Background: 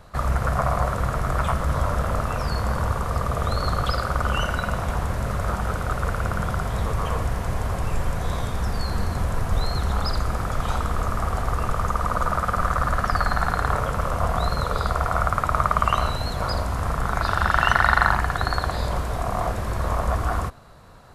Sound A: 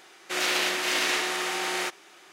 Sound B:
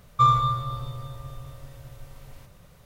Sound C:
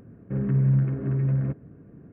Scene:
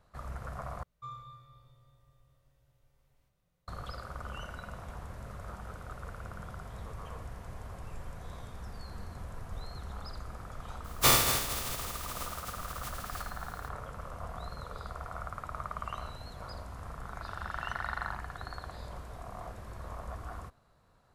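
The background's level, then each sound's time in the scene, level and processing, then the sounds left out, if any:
background −18.5 dB
0:00.83: overwrite with B −13 dB + tuned comb filter 58 Hz, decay 1.8 s, harmonics odd, mix 80%
0:10.84: mix in B −4.5 dB + compressing power law on the bin magnitudes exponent 0.21
not used: A, C

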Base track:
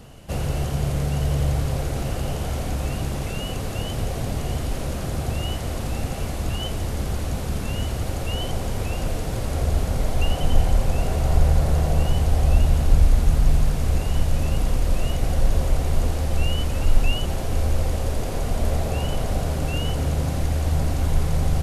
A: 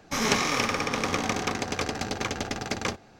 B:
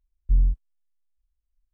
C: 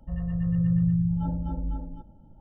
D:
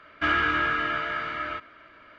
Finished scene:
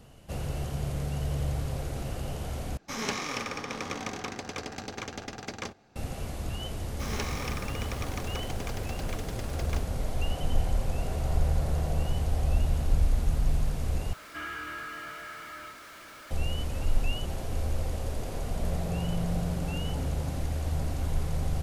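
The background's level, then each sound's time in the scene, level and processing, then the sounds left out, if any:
base track −8.5 dB
0:02.77: overwrite with A −8 dB
0:06.88: mix in A −11.5 dB + hold until the input has moved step −33 dBFS
0:14.13: overwrite with D −16.5 dB + converter with a step at zero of −26 dBFS
0:18.46: mix in C −12.5 dB + leveller curve on the samples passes 1
not used: B

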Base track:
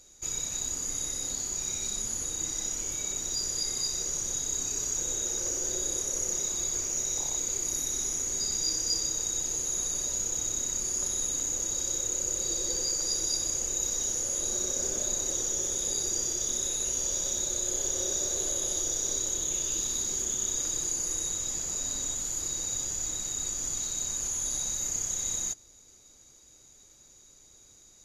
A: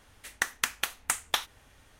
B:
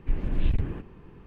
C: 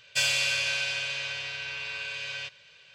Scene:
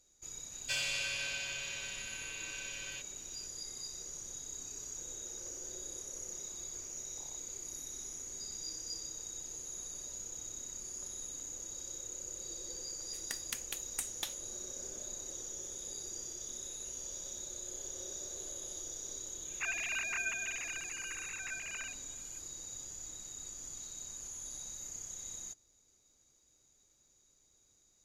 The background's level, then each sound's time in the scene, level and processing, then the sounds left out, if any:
base track −13.5 dB
0:00.53: mix in C −10 dB
0:12.89: mix in A −7.5 dB + parametric band 1,200 Hz −14.5 dB 1.9 octaves
0:19.45: mix in C −10 dB + three sine waves on the formant tracks
not used: B

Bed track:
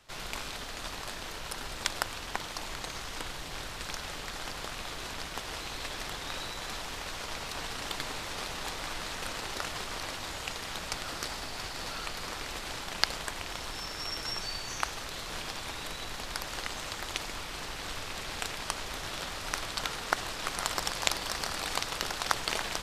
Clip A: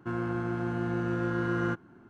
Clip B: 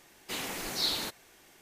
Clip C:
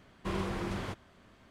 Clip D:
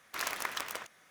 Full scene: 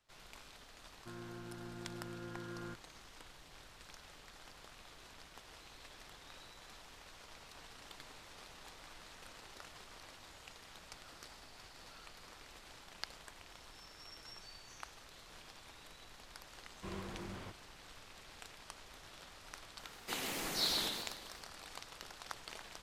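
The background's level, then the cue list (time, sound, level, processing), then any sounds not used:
bed track −17.5 dB
0:01.00: mix in A −17.5 dB
0:16.58: mix in C −11 dB
0:19.79: mix in B −5 dB + feedback echo with a swinging delay time 130 ms, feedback 46%, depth 185 cents, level −4 dB
not used: D

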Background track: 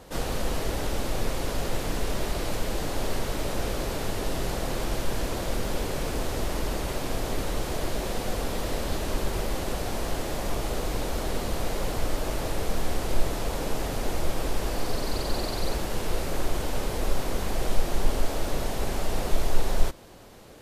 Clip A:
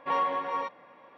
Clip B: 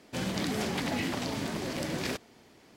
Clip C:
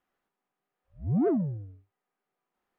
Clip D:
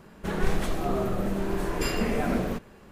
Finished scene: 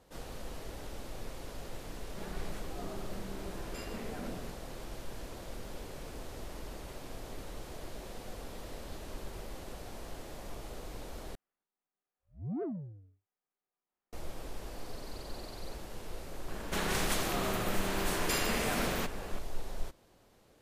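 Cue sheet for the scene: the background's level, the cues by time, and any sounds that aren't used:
background track −15 dB
0:01.93: mix in D −16 dB
0:11.35: overwrite with C −11.5 dB
0:16.48: mix in D −6.5 dB + every bin compressed towards the loudest bin 2 to 1
not used: A, B

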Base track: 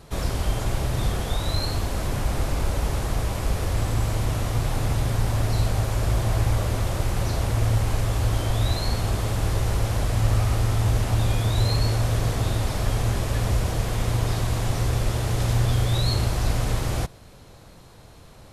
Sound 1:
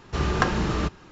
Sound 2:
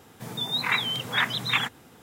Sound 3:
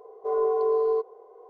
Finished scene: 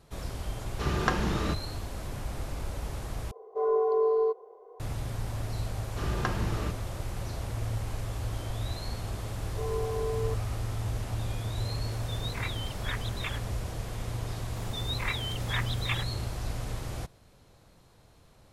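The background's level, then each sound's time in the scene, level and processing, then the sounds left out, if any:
base track −11 dB
0:00.66: mix in 1 −4.5 dB
0:03.31: overwrite with 3 −1.5 dB
0:05.83: mix in 1 −9.5 dB
0:09.33: mix in 3 −9.5 dB + centre clipping without the shift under −44 dBFS
0:11.71: mix in 2 −13 dB
0:14.36: mix in 2 −8.5 dB + notch filter 1,500 Hz

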